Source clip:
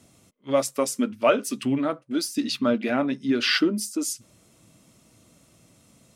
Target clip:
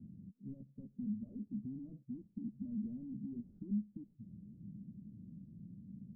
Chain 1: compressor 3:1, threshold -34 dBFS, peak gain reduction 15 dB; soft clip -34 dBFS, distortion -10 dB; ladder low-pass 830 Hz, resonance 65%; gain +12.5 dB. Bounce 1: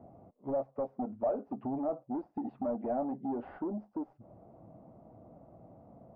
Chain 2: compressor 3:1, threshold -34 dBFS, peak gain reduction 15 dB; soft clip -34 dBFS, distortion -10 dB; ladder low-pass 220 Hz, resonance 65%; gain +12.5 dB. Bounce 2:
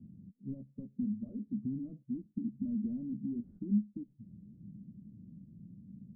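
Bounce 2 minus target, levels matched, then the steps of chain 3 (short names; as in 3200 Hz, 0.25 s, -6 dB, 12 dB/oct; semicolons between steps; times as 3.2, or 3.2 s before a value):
soft clip: distortion -6 dB
compressor 3:1, threshold -34 dBFS, peak gain reduction 15 dB; soft clip -43.5 dBFS, distortion -4 dB; ladder low-pass 220 Hz, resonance 65%; gain +12.5 dB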